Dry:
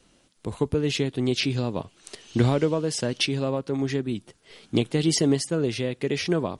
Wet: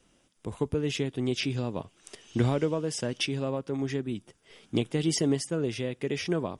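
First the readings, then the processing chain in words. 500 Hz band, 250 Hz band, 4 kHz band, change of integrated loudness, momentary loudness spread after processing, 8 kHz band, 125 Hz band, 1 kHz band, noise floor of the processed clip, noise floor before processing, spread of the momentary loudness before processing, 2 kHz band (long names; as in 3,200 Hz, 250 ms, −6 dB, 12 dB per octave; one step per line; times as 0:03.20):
−4.5 dB, −4.5 dB, −5.5 dB, −4.5 dB, 11 LU, −4.5 dB, −4.5 dB, −4.5 dB, −67 dBFS, −62 dBFS, 11 LU, −4.5 dB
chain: notch filter 4,200 Hz, Q 5.6
level −4.5 dB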